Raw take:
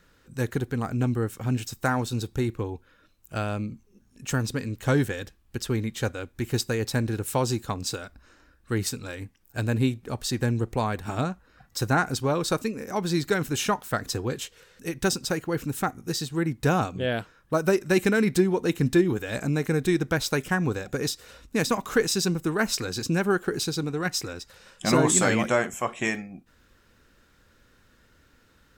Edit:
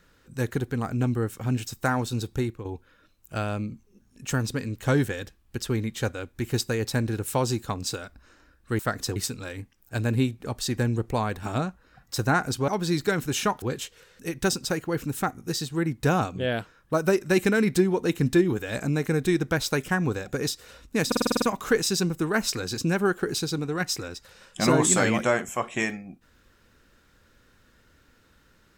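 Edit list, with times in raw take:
2.39–2.65 s: fade out, to -10.5 dB
12.31–12.91 s: delete
13.85–14.22 s: move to 8.79 s
21.67 s: stutter 0.05 s, 8 plays

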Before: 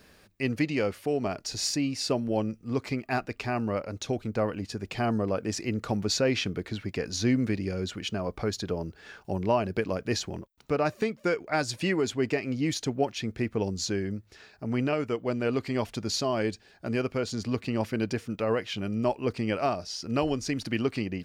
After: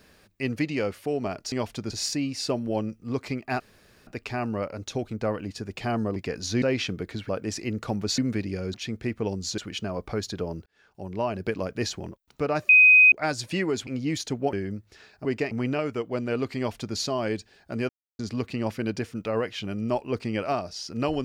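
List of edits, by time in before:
3.21 s: insert room tone 0.47 s
5.30–6.19 s: swap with 6.86–7.32 s
8.96–9.78 s: fade in
10.99–11.42 s: bleep 2.51 kHz -11 dBFS
12.17–12.43 s: move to 14.65 s
13.09–13.93 s: move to 7.88 s
15.71–16.10 s: copy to 1.52 s
17.03–17.33 s: mute

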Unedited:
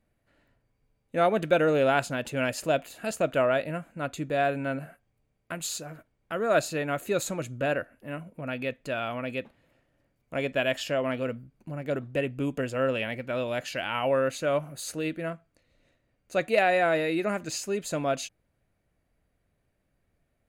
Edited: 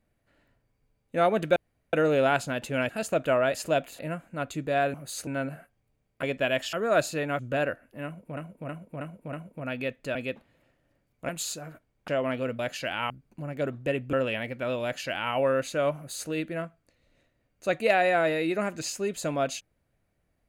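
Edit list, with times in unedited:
1.56 s: insert room tone 0.37 s
2.52–2.97 s: move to 3.62 s
5.53–6.32 s: swap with 10.38–10.88 s
6.98–7.48 s: delete
8.14–8.46 s: loop, 5 plays
8.96–9.24 s: delete
12.42–12.81 s: delete
13.51–14.02 s: copy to 11.39 s
14.64–14.97 s: copy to 4.57 s

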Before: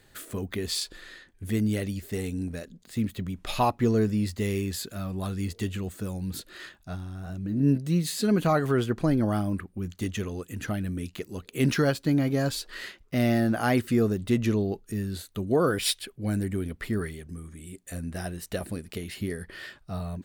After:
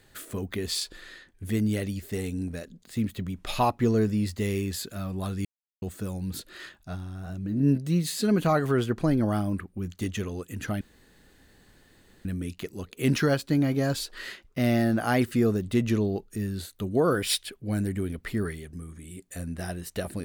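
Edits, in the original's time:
5.45–5.82 s: mute
10.81 s: insert room tone 1.44 s

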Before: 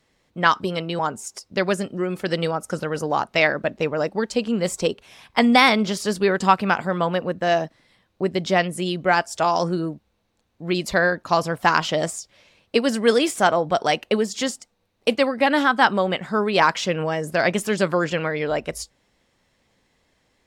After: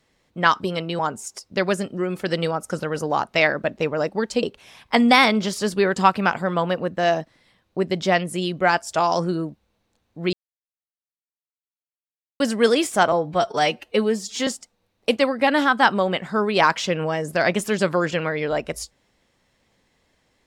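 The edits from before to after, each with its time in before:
4.43–4.87 s: delete
10.77–12.84 s: mute
13.56–14.46 s: stretch 1.5×

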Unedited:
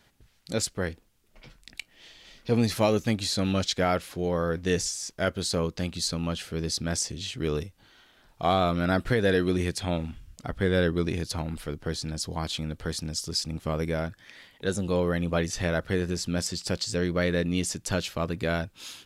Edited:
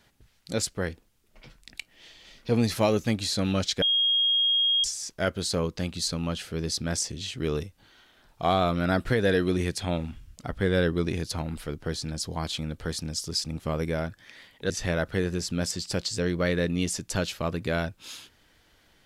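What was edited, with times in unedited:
3.82–4.84 s: bleep 3.26 kHz -20 dBFS
14.70–15.46 s: delete

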